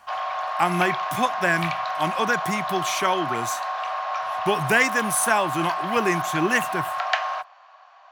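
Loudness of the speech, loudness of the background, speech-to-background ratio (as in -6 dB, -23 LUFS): -24.0 LUFS, -27.5 LUFS, 3.5 dB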